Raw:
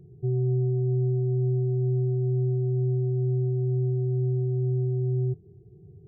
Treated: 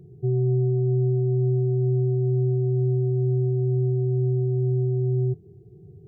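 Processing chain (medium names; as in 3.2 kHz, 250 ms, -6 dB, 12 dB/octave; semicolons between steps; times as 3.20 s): bass shelf 74 Hz -7.5 dB; trim +4.5 dB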